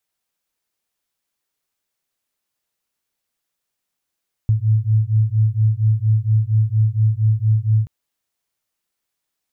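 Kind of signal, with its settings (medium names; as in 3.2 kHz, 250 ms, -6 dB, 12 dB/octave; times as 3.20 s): beating tones 107 Hz, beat 4.3 Hz, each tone -16.5 dBFS 3.38 s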